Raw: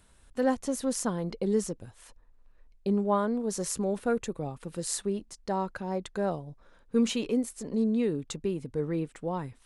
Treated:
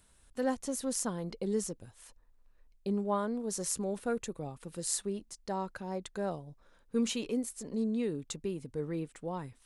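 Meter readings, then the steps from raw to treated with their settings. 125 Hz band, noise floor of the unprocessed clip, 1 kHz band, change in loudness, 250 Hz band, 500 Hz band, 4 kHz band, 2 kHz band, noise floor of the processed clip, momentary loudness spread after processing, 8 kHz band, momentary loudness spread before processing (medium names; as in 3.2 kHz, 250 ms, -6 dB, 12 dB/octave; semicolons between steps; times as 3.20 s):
-5.5 dB, -60 dBFS, -5.0 dB, -4.5 dB, -5.5 dB, -5.5 dB, -2.5 dB, -4.5 dB, -65 dBFS, 9 LU, -0.5 dB, 9 LU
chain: treble shelf 4.4 kHz +6.5 dB; trim -5.5 dB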